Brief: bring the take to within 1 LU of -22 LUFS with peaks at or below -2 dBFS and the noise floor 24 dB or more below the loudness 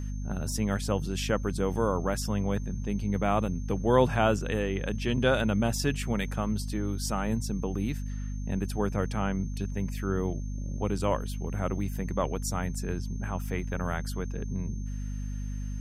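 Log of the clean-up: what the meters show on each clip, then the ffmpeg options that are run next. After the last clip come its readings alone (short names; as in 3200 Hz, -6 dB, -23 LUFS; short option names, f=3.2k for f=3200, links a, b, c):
hum 50 Hz; harmonics up to 250 Hz; hum level -31 dBFS; steady tone 6300 Hz; tone level -54 dBFS; loudness -30.5 LUFS; peak -9.0 dBFS; loudness target -22.0 LUFS
-> -af "bandreject=f=50:t=h:w=6,bandreject=f=100:t=h:w=6,bandreject=f=150:t=h:w=6,bandreject=f=200:t=h:w=6,bandreject=f=250:t=h:w=6"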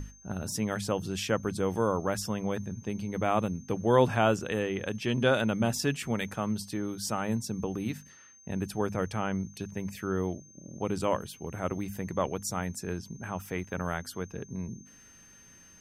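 hum none; steady tone 6300 Hz; tone level -54 dBFS
-> -af "bandreject=f=6.3k:w=30"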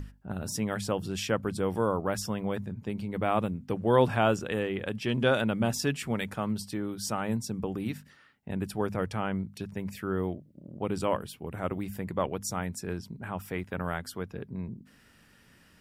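steady tone none; loudness -31.5 LUFS; peak -9.5 dBFS; loudness target -22.0 LUFS
-> -af "volume=9.5dB,alimiter=limit=-2dB:level=0:latency=1"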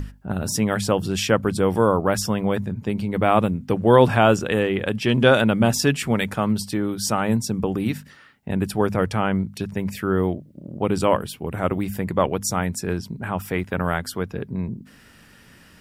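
loudness -22.0 LUFS; peak -2.0 dBFS; noise floor -50 dBFS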